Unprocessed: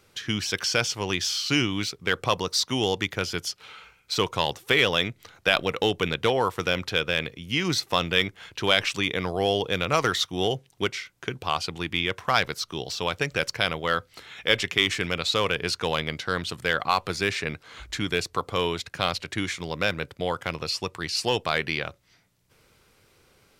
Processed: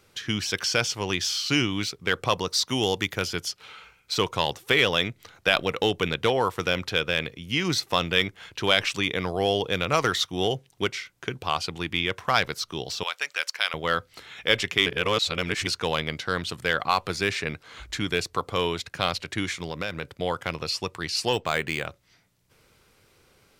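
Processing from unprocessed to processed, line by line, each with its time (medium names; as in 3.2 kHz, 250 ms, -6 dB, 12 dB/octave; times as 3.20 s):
2.67–3.28 s: treble shelf 9.5 kHz +9 dB
13.03–13.74 s: high-pass 1.1 kHz
14.86–15.67 s: reverse
19.65–20.17 s: compression 2.5:1, threshold -27 dBFS
21.33–21.87 s: decimation joined by straight lines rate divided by 4×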